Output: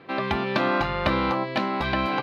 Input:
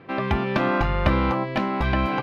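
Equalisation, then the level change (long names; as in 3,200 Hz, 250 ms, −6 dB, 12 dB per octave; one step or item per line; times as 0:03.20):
high-pass filter 220 Hz 6 dB per octave
parametric band 4,100 Hz +7.5 dB 0.48 octaves
0.0 dB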